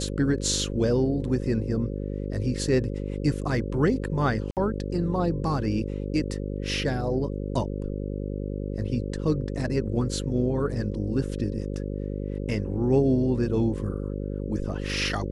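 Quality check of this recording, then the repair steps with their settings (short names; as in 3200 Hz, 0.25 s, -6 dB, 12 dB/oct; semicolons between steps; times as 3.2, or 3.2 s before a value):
buzz 50 Hz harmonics 11 -31 dBFS
4.51–4.57 gap 58 ms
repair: de-hum 50 Hz, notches 11; interpolate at 4.51, 58 ms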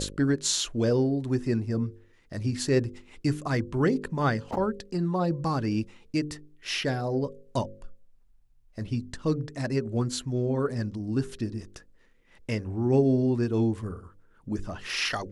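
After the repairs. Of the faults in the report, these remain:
none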